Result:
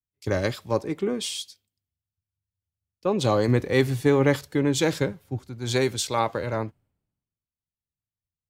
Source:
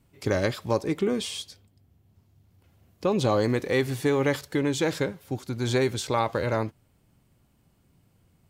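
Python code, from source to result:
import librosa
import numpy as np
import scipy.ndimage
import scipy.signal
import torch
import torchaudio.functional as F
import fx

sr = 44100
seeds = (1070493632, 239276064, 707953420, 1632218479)

y = fx.low_shelf(x, sr, hz=190.0, db=6.5, at=(3.48, 5.48))
y = fx.band_widen(y, sr, depth_pct=100)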